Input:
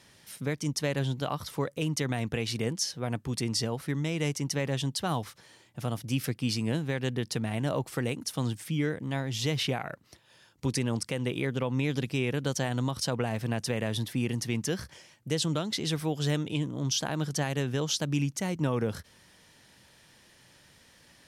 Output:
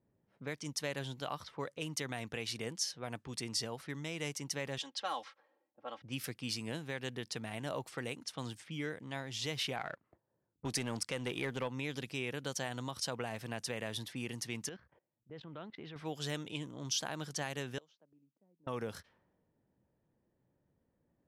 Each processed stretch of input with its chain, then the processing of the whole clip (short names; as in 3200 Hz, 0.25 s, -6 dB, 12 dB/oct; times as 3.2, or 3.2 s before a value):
4.78–6.02 three-band isolator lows -22 dB, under 370 Hz, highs -14 dB, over 7100 Hz + comb 3.7 ms, depth 74%
9.76–11.68 low-pass opened by the level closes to 1600 Hz, open at -26.5 dBFS + sample leveller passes 1
14.69–15.96 LPF 2900 Hz + level quantiser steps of 18 dB
17.78–18.67 steep high-pass 160 Hz + bell 560 Hz +4.5 dB 0.88 oct + flipped gate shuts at -26 dBFS, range -27 dB
whole clip: low-pass opened by the level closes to 320 Hz, open at -27.5 dBFS; low shelf 380 Hz -10 dB; gain -5 dB